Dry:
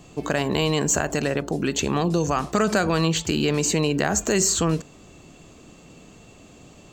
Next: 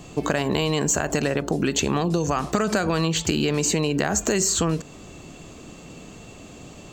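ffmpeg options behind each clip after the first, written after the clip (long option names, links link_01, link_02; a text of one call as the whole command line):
ffmpeg -i in.wav -af "acompressor=threshold=-24dB:ratio=6,volume=5.5dB" out.wav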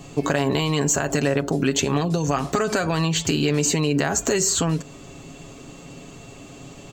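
ffmpeg -i in.wav -af "aecho=1:1:7.3:0.52" out.wav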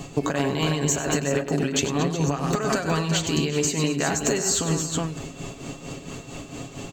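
ffmpeg -i in.wav -filter_complex "[0:a]asplit=2[link_01][link_02];[link_02]aecho=0:1:97|227|366:0.422|0.188|0.398[link_03];[link_01][link_03]amix=inputs=2:normalize=0,tremolo=f=4.4:d=0.63,acompressor=threshold=-26dB:ratio=6,volume=6dB" out.wav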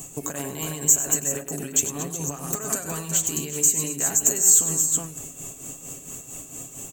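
ffmpeg -i in.wav -af "aexciter=amount=13.8:drive=7.2:freq=6900,volume=-9dB" out.wav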